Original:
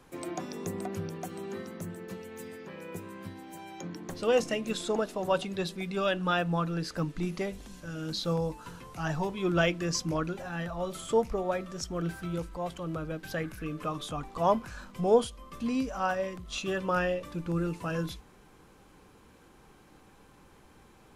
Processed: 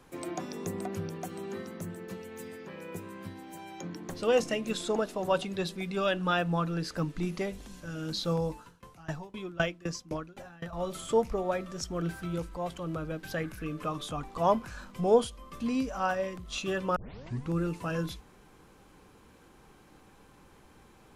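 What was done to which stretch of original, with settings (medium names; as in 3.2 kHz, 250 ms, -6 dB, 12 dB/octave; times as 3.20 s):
8.57–10.73 s: sawtooth tremolo in dB decaying 3.9 Hz, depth 23 dB
16.96 s: tape start 0.55 s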